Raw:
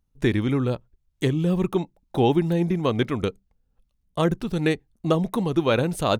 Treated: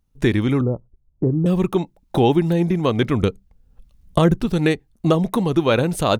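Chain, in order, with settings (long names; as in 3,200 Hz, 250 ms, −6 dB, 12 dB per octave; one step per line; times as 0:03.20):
camcorder AGC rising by 13 dB per second
0:00.61–0:01.46: Bessel low-pass filter 620 Hz, order 8
0:03.03–0:04.46: low-shelf EQ 220 Hz +6.5 dB
level +3.5 dB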